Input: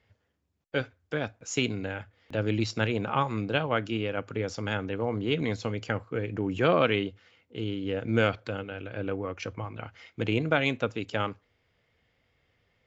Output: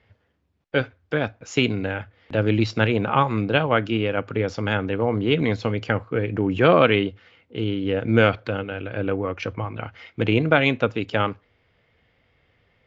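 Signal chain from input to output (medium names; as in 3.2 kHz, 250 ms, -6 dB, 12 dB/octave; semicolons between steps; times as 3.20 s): low-pass 3.9 kHz 12 dB/octave; trim +7.5 dB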